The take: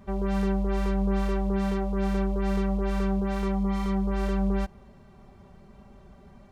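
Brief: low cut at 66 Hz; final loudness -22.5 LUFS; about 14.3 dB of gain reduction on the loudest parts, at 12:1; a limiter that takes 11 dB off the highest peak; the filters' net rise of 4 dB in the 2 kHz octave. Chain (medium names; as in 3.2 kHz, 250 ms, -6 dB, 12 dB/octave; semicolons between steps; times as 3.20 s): high-pass 66 Hz; peaking EQ 2 kHz +5 dB; compression 12:1, threshold -38 dBFS; trim +26 dB; peak limiter -14 dBFS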